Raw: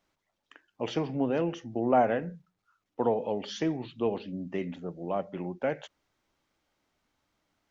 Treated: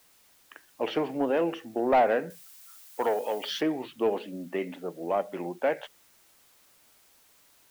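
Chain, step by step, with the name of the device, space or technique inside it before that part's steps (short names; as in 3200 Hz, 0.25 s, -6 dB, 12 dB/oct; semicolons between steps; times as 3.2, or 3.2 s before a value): tape answering machine (BPF 340–3100 Hz; soft clip -20.5 dBFS, distortion -15 dB; wow and flutter; white noise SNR 31 dB); 2.3–3.61 tilt +3 dB/oct; gain +5.5 dB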